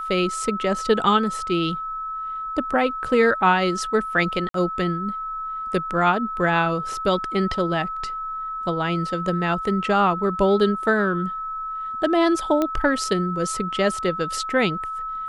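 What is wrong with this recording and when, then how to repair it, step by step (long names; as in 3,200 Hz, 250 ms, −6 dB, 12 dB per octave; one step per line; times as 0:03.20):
whistle 1,300 Hz −27 dBFS
0:04.49–0:04.54: drop-out 53 ms
0:12.62: click −10 dBFS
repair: click removal
notch filter 1,300 Hz, Q 30
repair the gap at 0:04.49, 53 ms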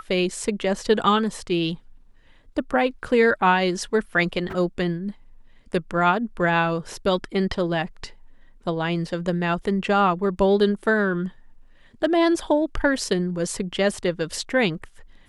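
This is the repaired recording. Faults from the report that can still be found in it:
none of them is left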